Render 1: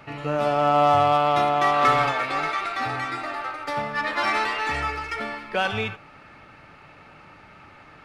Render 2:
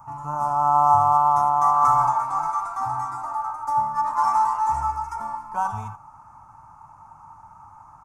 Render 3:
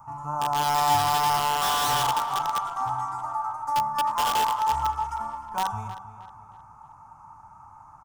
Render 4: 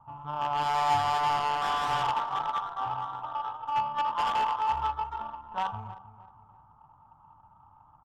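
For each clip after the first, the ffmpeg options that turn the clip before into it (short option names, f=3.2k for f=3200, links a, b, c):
-af "firequalizer=gain_entry='entry(110,0);entry(160,-6);entry(470,-24);entry(920,13);entry(1800,-23);entry(2800,-28);entry(4000,-26);entry(6200,2)':delay=0.05:min_phase=1"
-filter_complex "[0:a]acrossover=split=980[a][b];[b]aeval=exprs='(mod(11.9*val(0)+1,2)-1)/11.9':c=same[c];[a][c]amix=inputs=2:normalize=0,asplit=2[d][e];[e]adelay=313,lowpass=f=3.9k:p=1,volume=-13dB,asplit=2[f][g];[g]adelay=313,lowpass=f=3.9k:p=1,volume=0.42,asplit=2[h][i];[i]adelay=313,lowpass=f=3.9k:p=1,volume=0.42,asplit=2[j][k];[k]adelay=313,lowpass=f=3.9k:p=1,volume=0.42[l];[d][f][h][j][l]amix=inputs=5:normalize=0,volume=-2dB"
-af "tiltshelf=f=1.2k:g=-4,adynamicsmooth=sensitivity=1:basefreq=790,volume=-1.5dB"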